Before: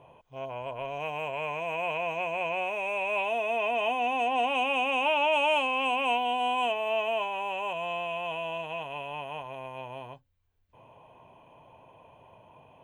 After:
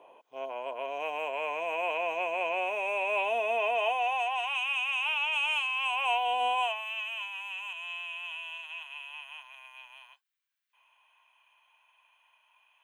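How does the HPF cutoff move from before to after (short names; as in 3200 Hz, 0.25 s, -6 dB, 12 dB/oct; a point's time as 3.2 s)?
HPF 24 dB/oct
3.52 s 300 Hz
4.63 s 1200 Hz
5.75 s 1200 Hz
6.45 s 380 Hz
6.9 s 1400 Hz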